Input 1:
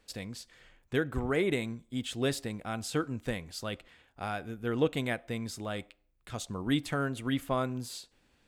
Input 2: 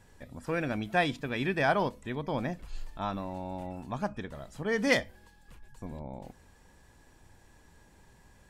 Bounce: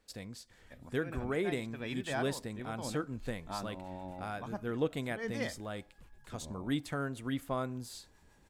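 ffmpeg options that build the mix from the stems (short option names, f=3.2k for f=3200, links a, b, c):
-filter_complex "[0:a]equalizer=f=2.8k:t=o:w=0.77:g=-4,volume=-4.5dB,asplit=2[a][b];[1:a]acrossover=split=660[c][d];[c]aeval=exprs='val(0)*(1-0.5/2+0.5/2*cos(2*PI*6.7*n/s))':c=same[e];[d]aeval=exprs='val(0)*(1-0.5/2-0.5/2*cos(2*PI*6.7*n/s))':c=same[f];[e][f]amix=inputs=2:normalize=0,adelay=500,volume=-3.5dB[g];[b]apad=whole_len=396773[h];[g][h]sidechaincompress=threshold=-43dB:ratio=8:attack=26:release=205[i];[a][i]amix=inputs=2:normalize=0"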